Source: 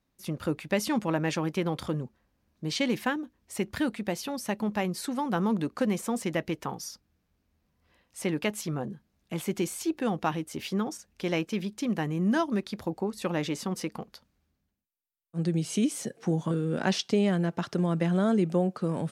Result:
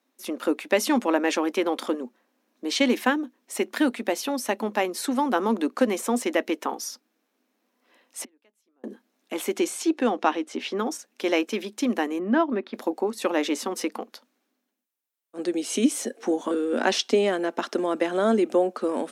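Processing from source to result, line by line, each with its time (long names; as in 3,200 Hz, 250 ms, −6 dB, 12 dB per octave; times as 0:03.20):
0:08.24–0:08.84: gate with flip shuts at −32 dBFS, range −40 dB
0:09.54–0:10.78: low-pass filter 11,000 Hz → 4,400 Hz
0:12.19–0:12.74: high-frequency loss of the air 360 metres
whole clip: elliptic high-pass filter 240 Hz, stop band 40 dB; notch filter 4,700 Hz, Q 17; level +7 dB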